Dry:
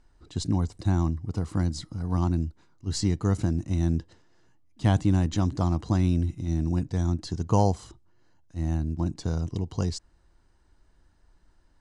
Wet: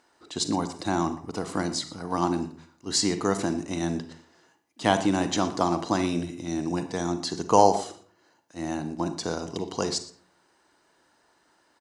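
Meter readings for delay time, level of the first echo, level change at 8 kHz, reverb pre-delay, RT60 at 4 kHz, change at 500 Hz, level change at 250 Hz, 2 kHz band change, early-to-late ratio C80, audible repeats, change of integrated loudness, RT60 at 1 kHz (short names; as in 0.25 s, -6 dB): 0.118 s, -19.0 dB, +9.0 dB, 37 ms, 0.35 s, +7.0 dB, +0.5 dB, +9.0 dB, 14.5 dB, 1, +0.5 dB, 0.45 s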